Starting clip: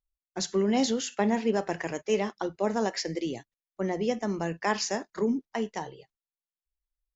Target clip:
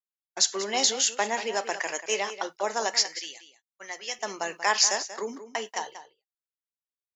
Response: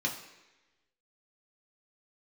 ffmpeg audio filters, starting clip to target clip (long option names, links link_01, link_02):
-filter_complex "[0:a]asetnsamples=nb_out_samples=441:pad=0,asendcmd='2.94 highpass f 1400;4.19 highpass f 680',highpass=690,agate=range=-33dB:threshold=-42dB:ratio=3:detection=peak,highshelf=frequency=3900:gain=10,asplit=2[link_01][link_02];[link_02]adelay=186.6,volume=-12dB,highshelf=frequency=4000:gain=-4.2[link_03];[link_01][link_03]amix=inputs=2:normalize=0,volume=4dB"